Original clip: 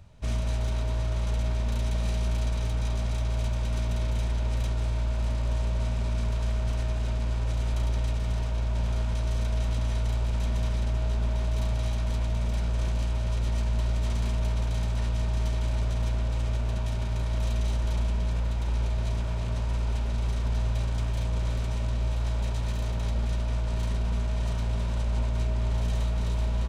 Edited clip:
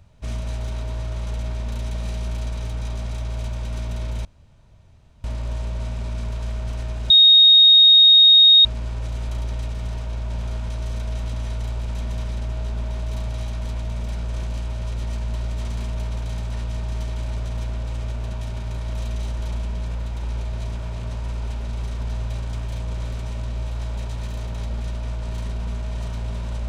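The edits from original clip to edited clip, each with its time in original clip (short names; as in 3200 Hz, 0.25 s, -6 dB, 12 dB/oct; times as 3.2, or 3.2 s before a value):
4.25–5.24 room tone
7.1 add tone 3730 Hz -7.5 dBFS 1.55 s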